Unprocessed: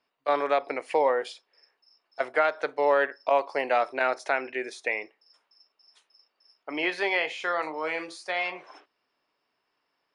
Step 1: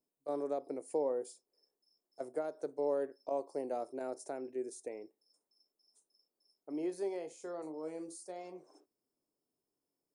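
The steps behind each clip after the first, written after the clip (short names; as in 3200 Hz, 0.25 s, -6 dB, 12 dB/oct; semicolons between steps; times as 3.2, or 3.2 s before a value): EQ curve 360 Hz 0 dB, 1900 Hz -29 dB, 3100 Hz -29 dB, 8000 Hz +5 dB; gain -3.5 dB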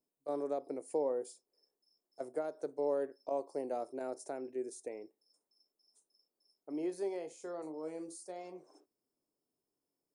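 nothing audible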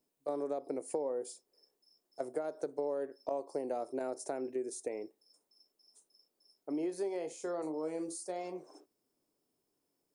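compressor 6:1, threshold -39 dBFS, peak gain reduction 10 dB; gain +6.5 dB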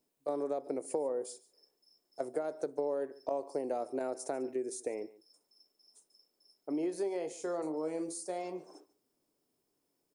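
echo 0.144 s -20 dB; gain +1.5 dB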